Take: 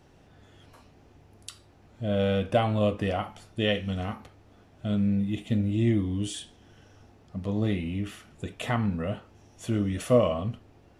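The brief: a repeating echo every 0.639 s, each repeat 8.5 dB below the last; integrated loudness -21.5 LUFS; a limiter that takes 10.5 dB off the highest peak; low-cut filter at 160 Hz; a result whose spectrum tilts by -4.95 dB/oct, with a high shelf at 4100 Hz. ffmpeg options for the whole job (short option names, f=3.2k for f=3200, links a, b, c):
-af "highpass=160,highshelf=f=4.1k:g=9,alimiter=limit=-20dB:level=0:latency=1,aecho=1:1:639|1278|1917|2556:0.376|0.143|0.0543|0.0206,volume=10.5dB"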